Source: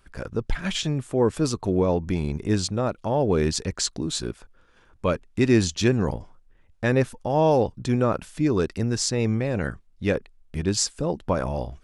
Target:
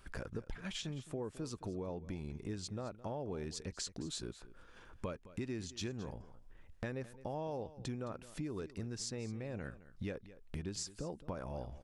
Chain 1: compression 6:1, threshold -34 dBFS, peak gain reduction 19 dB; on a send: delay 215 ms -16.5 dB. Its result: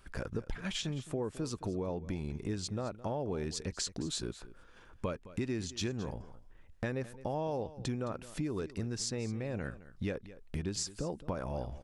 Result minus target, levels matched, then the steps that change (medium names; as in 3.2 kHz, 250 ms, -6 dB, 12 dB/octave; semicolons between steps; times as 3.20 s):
compression: peak gain reduction -5.5 dB
change: compression 6:1, threshold -40.5 dBFS, peak gain reduction 24.5 dB